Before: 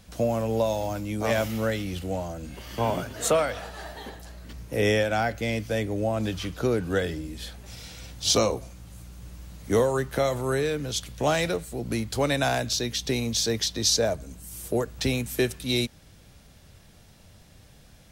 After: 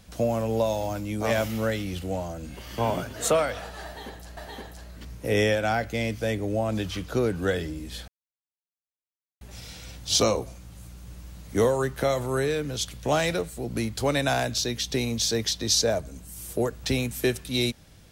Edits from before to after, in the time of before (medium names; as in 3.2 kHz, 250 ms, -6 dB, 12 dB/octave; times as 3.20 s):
3.85–4.37 s: loop, 2 plays
7.56 s: insert silence 1.33 s